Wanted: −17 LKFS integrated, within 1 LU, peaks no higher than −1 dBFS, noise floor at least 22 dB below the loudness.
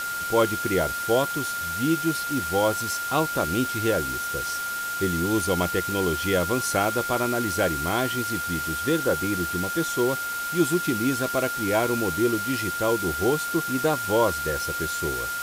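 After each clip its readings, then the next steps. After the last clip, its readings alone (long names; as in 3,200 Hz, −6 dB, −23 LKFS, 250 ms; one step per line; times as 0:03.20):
interfering tone 1,400 Hz; level of the tone −28 dBFS; background noise floor −30 dBFS; target noise floor −47 dBFS; integrated loudness −24.5 LKFS; sample peak −9.0 dBFS; target loudness −17.0 LKFS
→ notch filter 1,400 Hz, Q 30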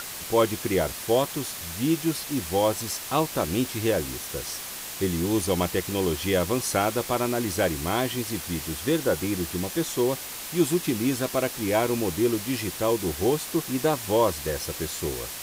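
interfering tone none found; background noise floor −37 dBFS; target noise floor −48 dBFS
→ noise reduction from a noise print 11 dB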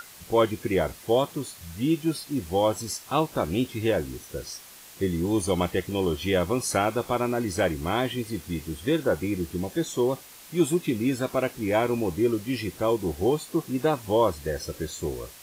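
background noise floor −47 dBFS; target noise floor −49 dBFS
→ noise reduction from a noise print 6 dB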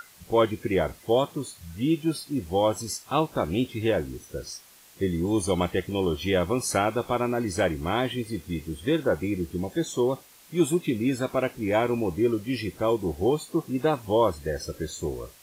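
background noise floor −53 dBFS; integrated loudness −27.0 LKFS; sample peak −10.0 dBFS; target loudness −17.0 LKFS
→ level +10 dB
brickwall limiter −1 dBFS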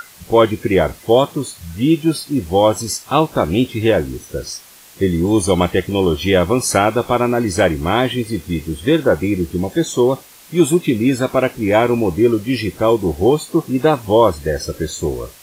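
integrated loudness −17.0 LKFS; sample peak −1.0 dBFS; background noise floor −43 dBFS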